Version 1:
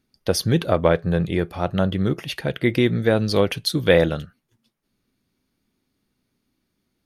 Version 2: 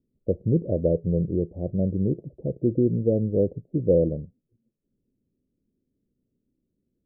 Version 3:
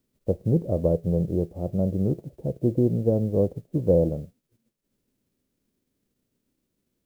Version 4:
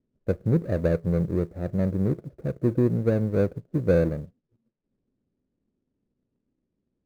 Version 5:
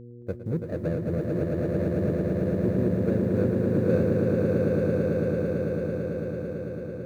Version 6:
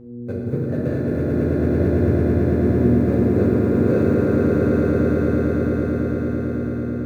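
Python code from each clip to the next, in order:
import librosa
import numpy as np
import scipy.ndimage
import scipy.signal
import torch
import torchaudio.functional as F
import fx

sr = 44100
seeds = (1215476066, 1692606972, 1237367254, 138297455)

y1 = scipy.signal.sosfilt(scipy.signal.butter(8, 560.0, 'lowpass', fs=sr, output='sos'), x)
y1 = F.gain(torch.from_numpy(y1), -2.5).numpy()
y2 = fx.envelope_flatten(y1, sr, power=0.6)
y3 = scipy.ndimage.median_filter(y2, 41, mode='constant')
y4 = fx.dmg_buzz(y3, sr, base_hz=120.0, harmonics=4, level_db=-37.0, tilt_db=-4, odd_only=False)
y4 = fx.echo_swell(y4, sr, ms=111, loudest=8, wet_db=-4.0)
y4 = F.gain(torch.from_numpy(y4), -7.0).numpy()
y5 = fx.rev_fdn(y4, sr, rt60_s=3.6, lf_ratio=1.0, hf_ratio=0.45, size_ms=23.0, drr_db=-6.0)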